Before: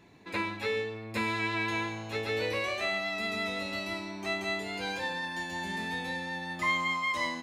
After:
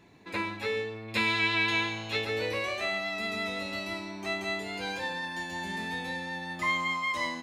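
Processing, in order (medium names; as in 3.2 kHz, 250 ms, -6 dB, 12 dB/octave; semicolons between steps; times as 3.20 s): 1.08–2.25 s: peaking EQ 3.3 kHz +10 dB 1.3 oct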